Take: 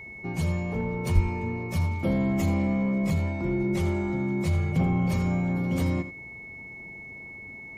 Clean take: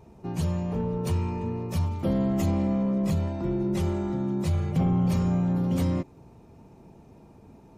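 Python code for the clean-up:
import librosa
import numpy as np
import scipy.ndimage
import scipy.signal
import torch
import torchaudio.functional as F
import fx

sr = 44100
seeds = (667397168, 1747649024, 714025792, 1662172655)

y = fx.notch(x, sr, hz=2200.0, q=30.0)
y = fx.highpass(y, sr, hz=140.0, slope=24, at=(1.14, 1.26), fade=0.02)
y = fx.fix_echo_inverse(y, sr, delay_ms=82, level_db=-13.0)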